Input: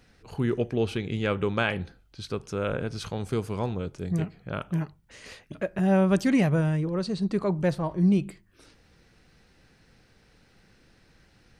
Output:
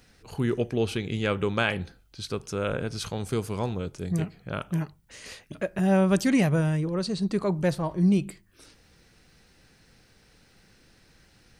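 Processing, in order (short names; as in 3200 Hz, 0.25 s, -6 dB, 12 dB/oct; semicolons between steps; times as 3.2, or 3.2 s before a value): high shelf 4800 Hz +8.5 dB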